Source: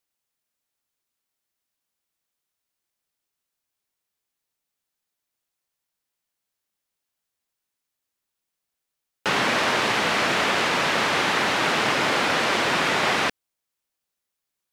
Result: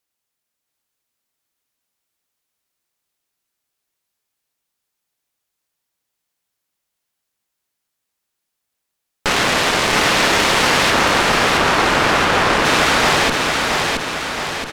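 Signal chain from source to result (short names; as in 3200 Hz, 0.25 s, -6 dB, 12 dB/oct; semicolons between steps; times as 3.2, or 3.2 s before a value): 10.9–12.65 resonant high shelf 1900 Hz -7.5 dB, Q 1.5; added harmonics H 6 -10 dB, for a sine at -9 dBFS; feedback echo 0.672 s, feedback 55%, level -3 dB; gain +3 dB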